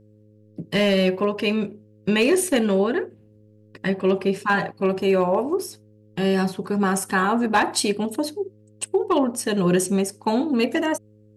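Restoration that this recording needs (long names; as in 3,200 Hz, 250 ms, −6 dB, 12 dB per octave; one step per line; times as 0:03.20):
clipped peaks rebuilt −11.5 dBFS
hum removal 106 Hz, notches 5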